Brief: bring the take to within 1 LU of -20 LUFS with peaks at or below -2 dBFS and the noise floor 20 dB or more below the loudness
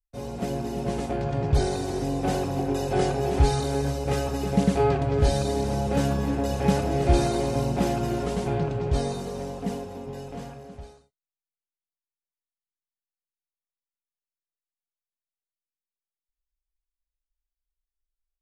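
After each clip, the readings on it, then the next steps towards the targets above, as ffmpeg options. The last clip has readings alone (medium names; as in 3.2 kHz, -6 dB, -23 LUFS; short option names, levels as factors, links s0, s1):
loudness -26.0 LUFS; peak level -7.0 dBFS; loudness target -20.0 LUFS
-> -af "volume=2,alimiter=limit=0.794:level=0:latency=1"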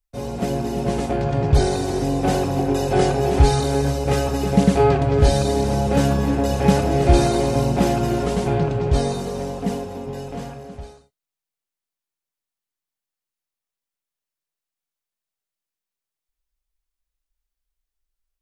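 loudness -20.0 LUFS; peak level -2.0 dBFS; noise floor -88 dBFS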